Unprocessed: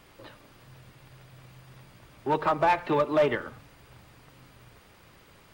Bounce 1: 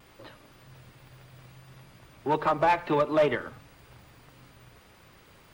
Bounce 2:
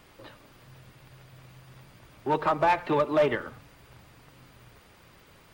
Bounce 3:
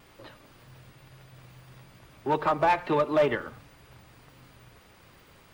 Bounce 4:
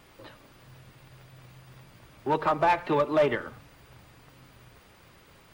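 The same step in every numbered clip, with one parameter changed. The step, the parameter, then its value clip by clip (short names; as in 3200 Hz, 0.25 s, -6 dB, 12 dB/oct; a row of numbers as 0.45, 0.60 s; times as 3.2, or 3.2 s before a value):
vibrato, rate: 0.67, 14, 1.1, 3.9 Hz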